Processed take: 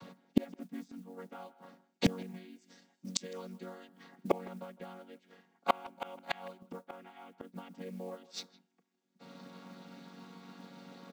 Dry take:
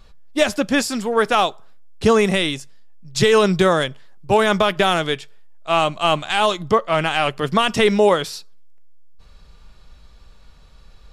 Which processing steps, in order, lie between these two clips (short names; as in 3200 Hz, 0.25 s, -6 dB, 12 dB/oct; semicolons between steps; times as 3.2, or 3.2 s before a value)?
chord vocoder major triad, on F#3; 2.56–3.89 tone controls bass -5 dB, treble +11 dB; modulation noise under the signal 25 dB; flipped gate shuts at -21 dBFS, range -37 dB; speakerphone echo 0.16 s, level -18 dB; gain +9 dB